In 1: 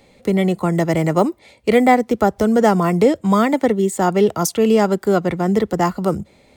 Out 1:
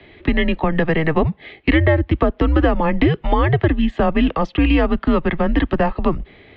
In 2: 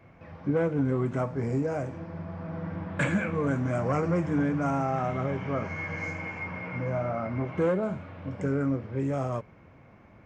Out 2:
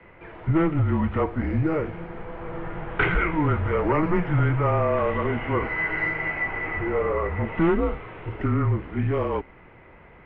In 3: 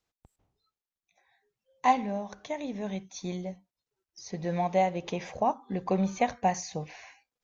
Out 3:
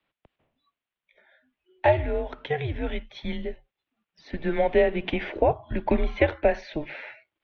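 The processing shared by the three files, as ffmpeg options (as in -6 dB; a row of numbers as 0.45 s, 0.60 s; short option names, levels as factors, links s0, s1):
-filter_complex "[0:a]acrossover=split=260|650[s0][s1][s2];[s0]acompressor=threshold=0.0631:ratio=4[s3];[s1]acompressor=threshold=0.0447:ratio=4[s4];[s2]acompressor=threshold=0.0398:ratio=4[s5];[s3][s4][s5]amix=inputs=3:normalize=0,highpass=f=190:t=q:w=0.5412,highpass=f=190:t=q:w=1.307,lowpass=f=3300:t=q:w=0.5176,lowpass=f=3300:t=q:w=0.7071,lowpass=f=3300:t=q:w=1.932,afreqshift=-160,highshelf=f=2400:g=9.5,volume=2.11"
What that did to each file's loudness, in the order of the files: -1.0 LU, +5.0 LU, +4.5 LU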